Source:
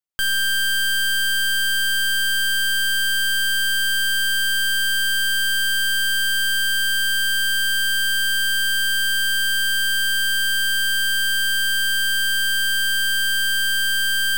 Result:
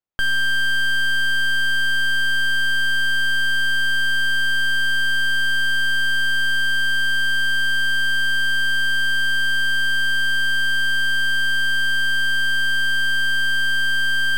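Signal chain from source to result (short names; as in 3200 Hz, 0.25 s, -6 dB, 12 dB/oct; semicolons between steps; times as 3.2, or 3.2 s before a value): LPF 1300 Hz 6 dB/oct; gain +5.5 dB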